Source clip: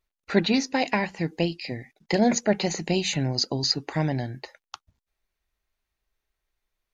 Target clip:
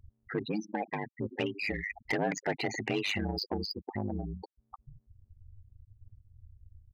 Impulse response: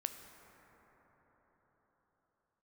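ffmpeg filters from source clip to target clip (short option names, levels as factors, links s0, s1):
-filter_complex "[0:a]aeval=exprs='val(0)+0.5*0.0178*sgn(val(0))':c=same,aecho=1:1:2.5:0.32,acompressor=threshold=0.0355:ratio=2,asettb=1/sr,asplit=3[s0][s1][s2];[s0]atrim=end=1.384[s3];[s1]atrim=start=1.38:end=3.58,asetpts=PTS-STARTPTS,afade=t=in:d=0.004:c=qsin,afade=t=out:st=2.196:d=0.004:c=qsin,equalizer=f=1700:w=0.5:g=11[s4];[s2]atrim=start=3.576[s5];[s3][s4]acrossfade=d=0.004:c1=hsin:c2=qsin[s6];[s6][s5]acrossfade=d=0.004:c1=qsin:c2=hsin,afftfilt=real='re*gte(hypot(re,im),0.0891)':imag='im*gte(hypot(re,im),0.0891)':win_size=1024:overlap=0.75,asoftclip=type=tanh:threshold=0.0944,highpass=f=49:p=1,highshelf=f=4900:g=-10.5,aeval=exprs='val(0)*sin(2*PI*51*n/s)':c=same"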